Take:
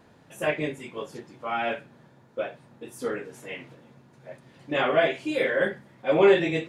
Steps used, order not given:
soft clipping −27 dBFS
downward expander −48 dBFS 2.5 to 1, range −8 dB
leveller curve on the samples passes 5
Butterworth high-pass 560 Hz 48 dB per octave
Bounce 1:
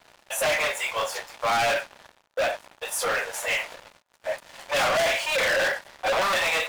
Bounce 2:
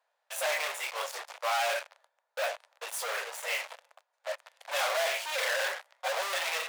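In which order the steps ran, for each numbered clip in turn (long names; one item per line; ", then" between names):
soft clipping, then Butterworth high-pass, then leveller curve on the samples, then downward expander
leveller curve on the samples, then downward expander, then soft clipping, then Butterworth high-pass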